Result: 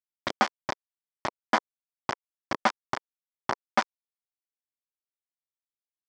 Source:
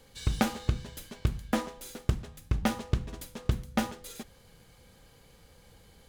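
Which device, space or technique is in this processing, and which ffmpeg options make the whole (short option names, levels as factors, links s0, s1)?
hand-held game console: -af "acrusher=bits=3:mix=0:aa=0.000001,highpass=470,equalizer=f=470:t=q:w=4:g=-8,equalizer=f=1000:t=q:w=4:g=4,equalizer=f=2700:t=q:w=4:g=-10,equalizer=f=3900:t=q:w=4:g=-9,lowpass=f=4600:w=0.5412,lowpass=f=4600:w=1.3066,volume=2.37"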